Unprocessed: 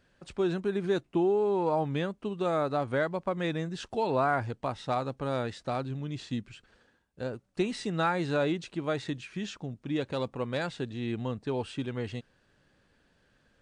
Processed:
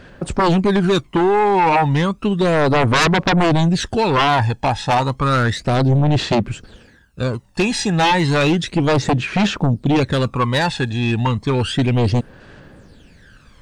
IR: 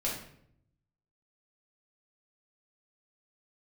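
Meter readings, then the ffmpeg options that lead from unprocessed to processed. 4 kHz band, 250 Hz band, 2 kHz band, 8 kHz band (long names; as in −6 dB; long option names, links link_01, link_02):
+18.5 dB, +14.5 dB, +16.0 dB, +20.0 dB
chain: -af "aphaser=in_gain=1:out_gain=1:delay=1.2:decay=0.67:speed=0.32:type=sinusoidal,aeval=exprs='0.335*sin(PI/2*5.01*val(0)/0.335)':channel_layout=same,volume=-1.5dB"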